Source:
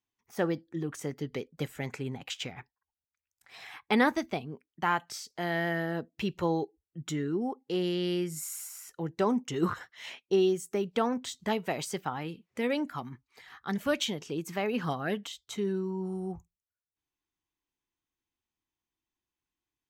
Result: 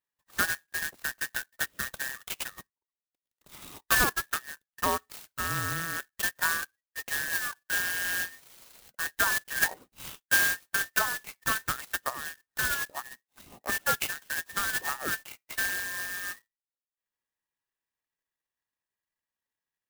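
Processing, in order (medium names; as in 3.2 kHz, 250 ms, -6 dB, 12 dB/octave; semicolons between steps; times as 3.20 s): every band turned upside down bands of 2 kHz; resonant high shelf 6.4 kHz -13.5 dB, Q 1.5; transient shaper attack +4 dB, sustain -8 dB; sampling jitter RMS 0.067 ms; trim -1.5 dB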